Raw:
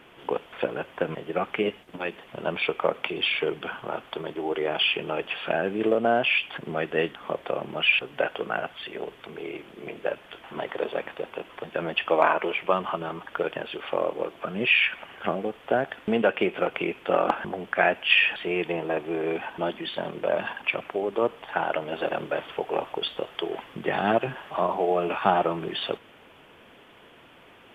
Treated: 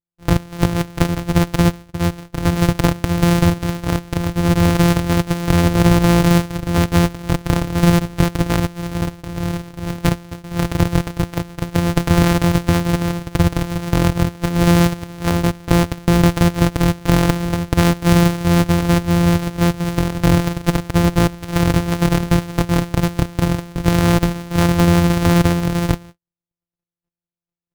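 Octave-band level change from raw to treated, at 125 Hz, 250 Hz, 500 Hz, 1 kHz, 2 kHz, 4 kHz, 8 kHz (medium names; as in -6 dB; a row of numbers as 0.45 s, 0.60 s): +27.0 dB, +17.5 dB, +3.5 dB, +5.0 dB, +1.0 dB, +3.0 dB, no reading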